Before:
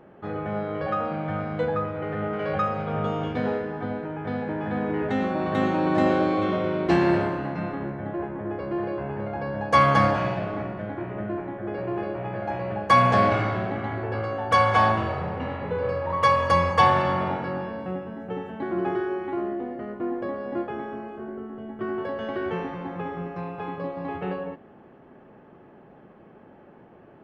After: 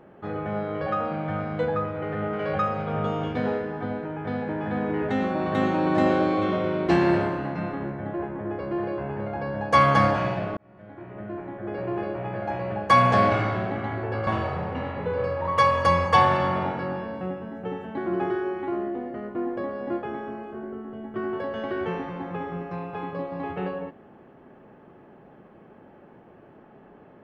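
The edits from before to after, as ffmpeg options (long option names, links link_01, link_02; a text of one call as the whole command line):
ffmpeg -i in.wav -filter_complex "[0:a]asplit=3[link_01][link_02][link_03];[link_01]atrim=end=10.57,asetpts=PTS-STARTPTS,afade=type=out:start_time=10.566:duration=0.004:curve=hsin[link_04];[link_02]atrim=start=10.57:end=14.272,asetpts=PTS-STARTPTS,afade=type=in:duration=1.28[link_05];[link_03]atrim=start=14.918[link_06];[link_04][link_05]concat=n=2:v=0:a=1[link_07];[link_07][link_06]acrossfade=duration=0.004:curve1=hsin:curve2=hsin" out.wav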